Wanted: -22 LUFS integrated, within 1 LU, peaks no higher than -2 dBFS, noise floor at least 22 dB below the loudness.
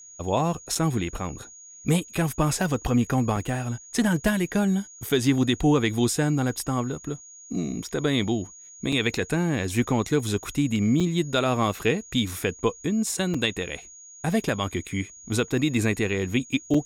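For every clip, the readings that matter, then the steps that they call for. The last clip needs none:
dropouts 7; longest dropout 4.6 ms; steady tone 6700 Hz; tone level -44 dBFS; loudness -25.5 LUFS; peak -10.5 dBFS; loudness target -22.0 LUFS
-> interpolate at 0.75/3.36/5.09/8.92/11/13.34/16.74, 4.6 ms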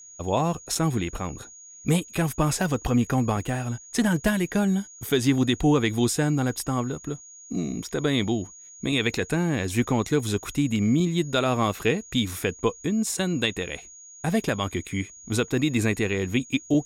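dropouts 0; steady tone 6700 Hz; tone level -44 dBFS
-> notch 6700 Hz, Q 30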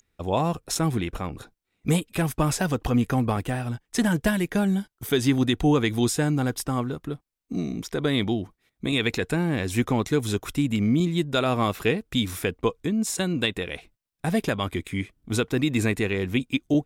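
steady tone none; loudness -25.5 LUFS; peak -10.5 dBFS; loudness target -22.0 LUFS
-> gain +3.5 dB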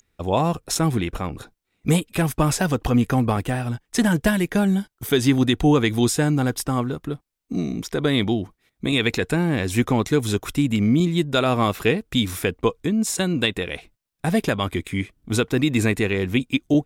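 loudness -22.0 LUFS; peak -7.0 dBFS; noise floor -75 dBFS

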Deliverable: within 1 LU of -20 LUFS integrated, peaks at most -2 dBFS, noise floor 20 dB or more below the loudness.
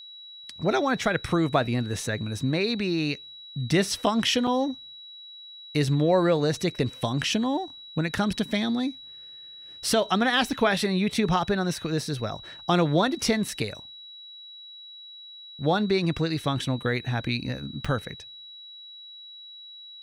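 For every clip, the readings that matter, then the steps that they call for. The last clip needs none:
dropouts 2; longest dropout 4.7 ms; steady tone 3900 Hz; tone level -42 dBFS; loudness -26.0 LUFS; peak -8.5 dBFS; loudness target -20.0 LUFS
-> interpolate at 4.47/17.85, 4.7 ms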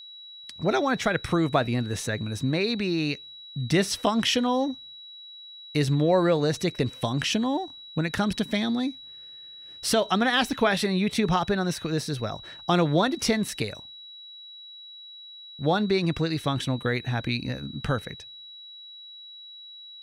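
dropouts 0; steady tone 3900 Hz; tone level -42 dBFS
-> notch 3900 Hz, Q 30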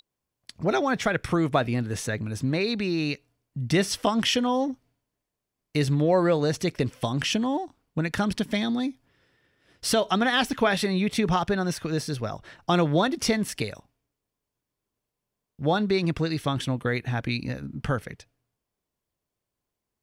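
steady tone none; loudness -26.0 LUFS; peak -9.0 dBFS; loudness target -20.0 LUFS
-> gain +6 dB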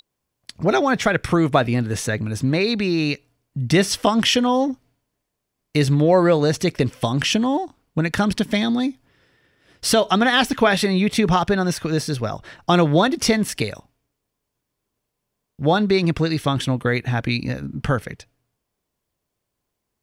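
loudness -20.0 LUFS; peak -3.0 dBFS; noise floor -79 dBFS

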